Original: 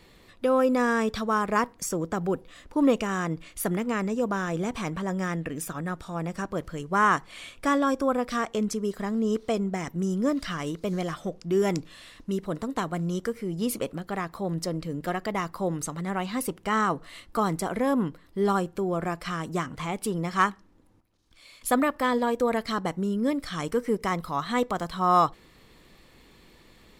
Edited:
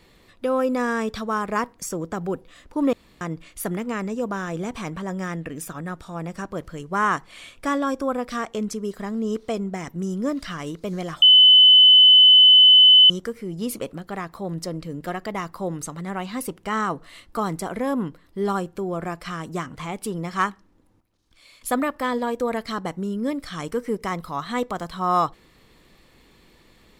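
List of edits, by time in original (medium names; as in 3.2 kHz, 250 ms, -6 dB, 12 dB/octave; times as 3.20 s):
2.93–3.21 s: room tone
11.22–13.10 s: bleep 3.02 kHz -8 dBFS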